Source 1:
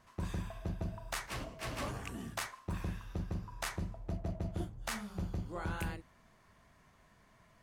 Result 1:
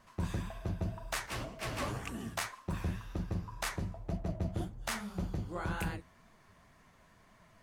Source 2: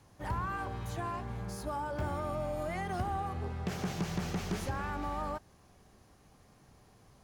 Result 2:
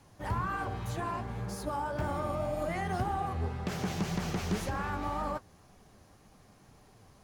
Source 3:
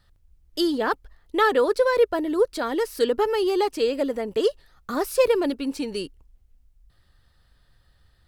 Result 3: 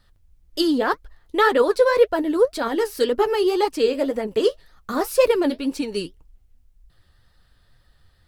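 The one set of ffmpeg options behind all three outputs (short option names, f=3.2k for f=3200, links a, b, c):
-af "flanger=delay=3.1:depth=9.5:regen=50:speed=1.9:shape=triangular,volume=6.5dB"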